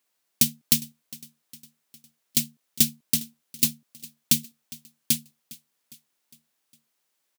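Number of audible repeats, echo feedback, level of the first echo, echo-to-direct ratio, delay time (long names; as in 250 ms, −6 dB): 3, 54%, −21.0 dB, −19.5 dB, 407 ms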